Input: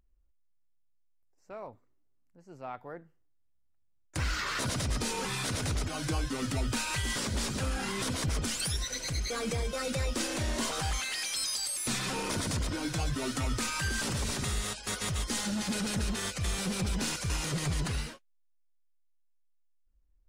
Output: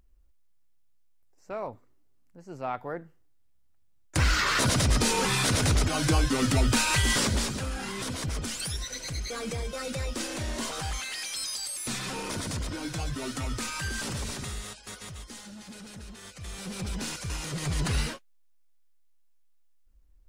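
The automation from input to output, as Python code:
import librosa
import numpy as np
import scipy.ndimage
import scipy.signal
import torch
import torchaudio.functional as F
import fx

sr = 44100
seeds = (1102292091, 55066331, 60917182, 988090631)

y = fx.gain(x, sr, db=fx.line((7.23, 8.0), (7.64, -1.0), (14.18, -1.0), (15.49, -12.5), (16.18, -12.5), (16.89, -2.0), (17.52, -2.0), (18.12, 9.0)))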